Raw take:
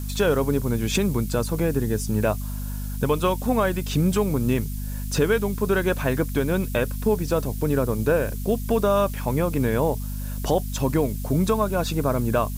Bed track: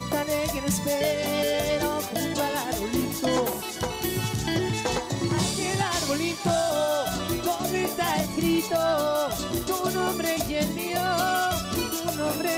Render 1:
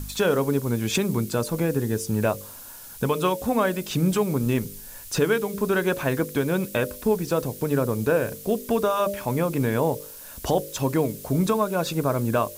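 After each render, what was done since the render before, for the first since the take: de-hum 50 Hz, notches 12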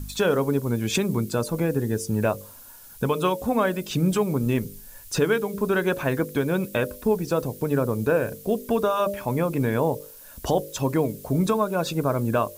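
noise reduction 6 dB, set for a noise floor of -42 dBFS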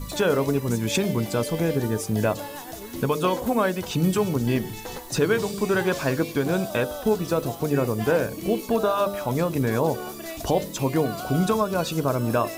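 add bed track -9.5 dB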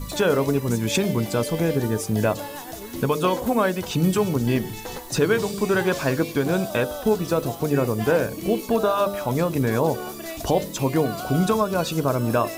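trim +1.5 dB

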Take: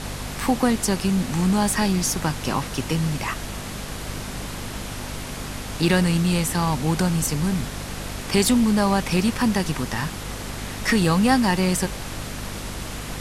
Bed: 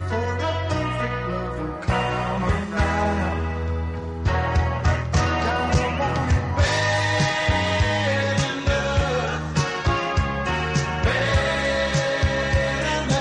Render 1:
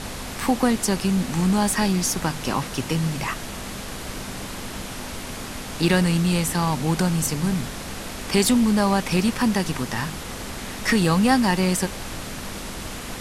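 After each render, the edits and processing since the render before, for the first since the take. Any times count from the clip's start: de-hum 50 Hz, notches 3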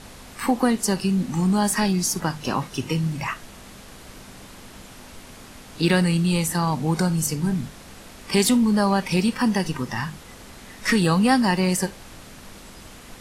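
noise print and reduce 10 dB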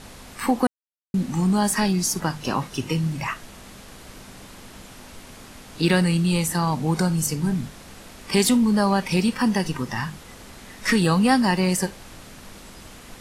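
0.67–1.14 s: mute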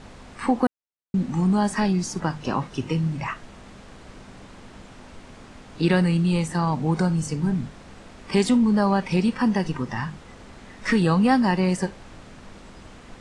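steep low-pass 9.3 kHz 36 dB/octave; treble shelf 3.2 kHz -10.5 dB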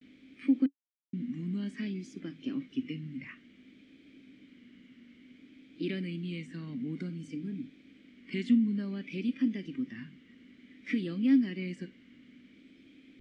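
vowel filter i; vibrato 0.56 Hz 77 cents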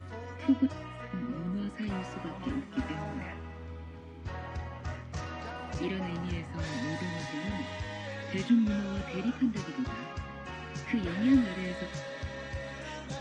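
add bed -18 dB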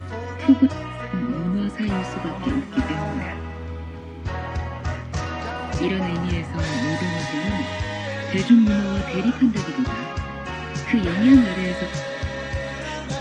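trim +11 dB

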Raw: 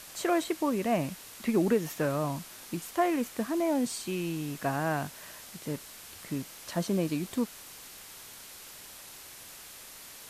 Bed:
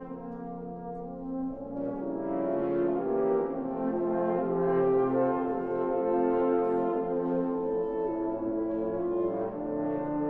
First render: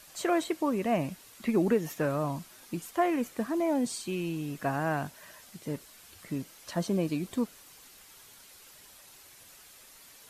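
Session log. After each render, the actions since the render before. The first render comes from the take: noise reduction 8 dB, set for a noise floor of -48 dBFS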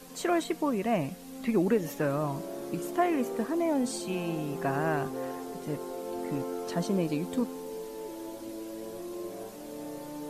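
add bed -9.5 dB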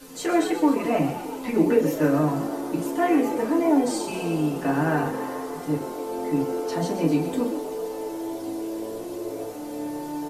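frequency-shifting echo 130 ms, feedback 64%, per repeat +76 Hz, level -10.5 dB; FDN reverb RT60 0.33 s, low-frequency decay 1×, high-frequency decay 0.75×, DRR -3 dB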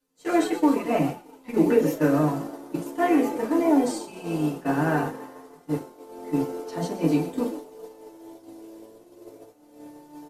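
expander -21 dBFS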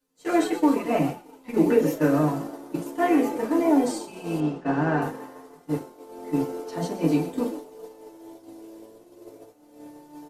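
4.40–5.02 s: distance through air 120 m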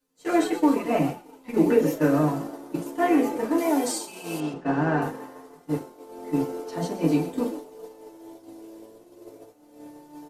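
3.58–4.54 s: tilt EQ +2.5 dB/octave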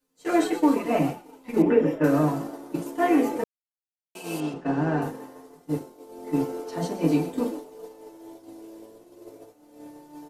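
1.62–2.04 s: Savitzky-Golay filter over 25 samples; 3.44–4.15 s: mute; 4.67–6.27 s: peaking EQ 1.4 kHz -5 dB 2 oct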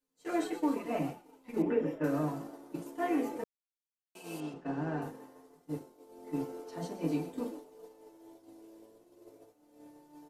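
trim -10.5 dB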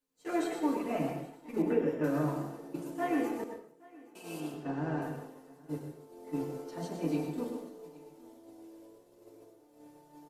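delay 819 ms -23 dB; plate-style reverb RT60 0.56 s, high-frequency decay 0.85×, pre-delay 85 ms, DRR 5 dB

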